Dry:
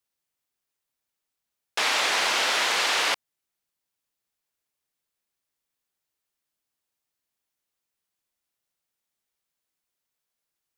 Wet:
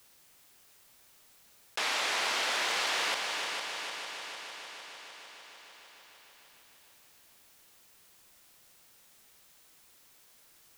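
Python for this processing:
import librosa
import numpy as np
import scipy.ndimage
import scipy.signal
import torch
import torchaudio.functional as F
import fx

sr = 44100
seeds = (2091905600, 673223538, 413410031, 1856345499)

y = fx.backlash(x, sr, play_db=-42.5, at=(2.35, 3.1))
y = fx.echo_heads(y, sr, ms=151, heads='second and third', feedback_pct=49, wet_db=-10.5)
y = fx.env_flatten(y, sr, amount_pct=50)
y = y * librosa.db_to_amplitude(-8.0)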